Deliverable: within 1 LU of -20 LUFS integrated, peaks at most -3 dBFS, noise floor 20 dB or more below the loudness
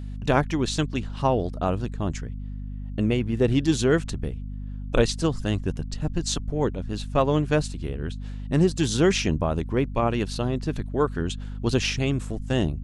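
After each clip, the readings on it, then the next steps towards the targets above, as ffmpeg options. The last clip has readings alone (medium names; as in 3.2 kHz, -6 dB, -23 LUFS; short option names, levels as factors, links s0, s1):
hum 50 Hz; highest harmonic 250 Hz; hum level -31 dBFS; loudness -25.5 LUFS; peak level -5.5 dBFS; loudness target -20.0 LUFS
-> -af "bandreject=f=50:t=h:w=6,bandreject=f=100:t=h:w=6,bandreject=f=150:t=h:w=6,bandreject=f=200:t=h:w=6,bandreject=f=250:t=h:w=6"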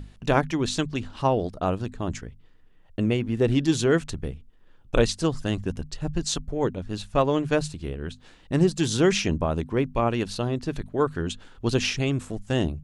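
hum not found; loudness -26.0 LUFS; peak level -6.0 dBFS; loudness target -20.0 LUFS
-> -af "volume=2,alimiter=limit=0.708:level=0:latency=1"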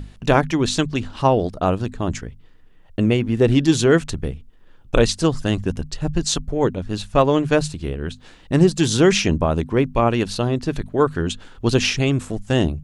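loudness -20.0 LUFS; peak level -3.0 dBFS; noise floor -47 dBFS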